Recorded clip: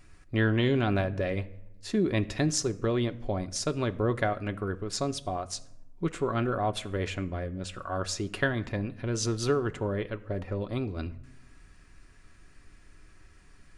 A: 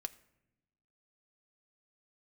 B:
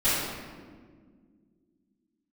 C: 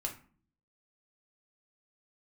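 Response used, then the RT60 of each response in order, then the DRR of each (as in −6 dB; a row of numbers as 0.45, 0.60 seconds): A; non-exponential decay, 1.8 s, 0.45 s; 7.5, −16.5, 0.5 decibels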